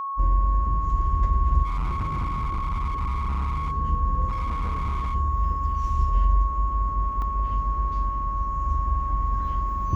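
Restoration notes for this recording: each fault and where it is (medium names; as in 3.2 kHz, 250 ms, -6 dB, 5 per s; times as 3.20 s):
whine 1.1 kHz -27 dBFS
1.64–3.72 s: clipped -23 dBFS
4.28–5.15 s: clipped -23 dBFS
7.22 s: dropout 2.3 ms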